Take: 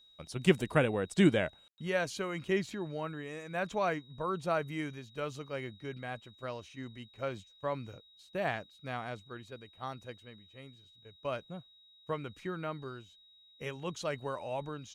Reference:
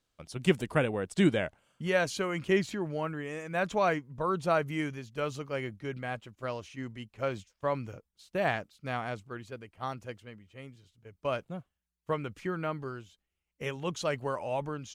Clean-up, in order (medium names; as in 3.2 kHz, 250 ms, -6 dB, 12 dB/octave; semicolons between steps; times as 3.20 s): band-stop 3.8 kHz, Q 30; room tone fill 1.68–1.78 s; trim 0 dB, from 1.68 s +4.5 dB